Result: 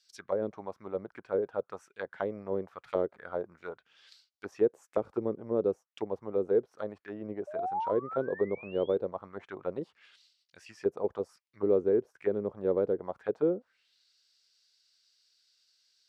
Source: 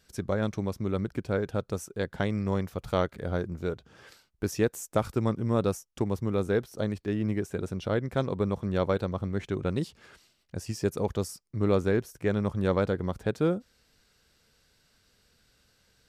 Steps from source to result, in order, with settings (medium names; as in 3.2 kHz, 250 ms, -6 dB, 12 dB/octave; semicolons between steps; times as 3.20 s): painted sound rise, 7.47–8.96 s, 580–3700 Hz -33 dBFS; auto-wah 420–4900 Hz, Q 2.5, down, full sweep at -23 dBFS; trim +2.5 dB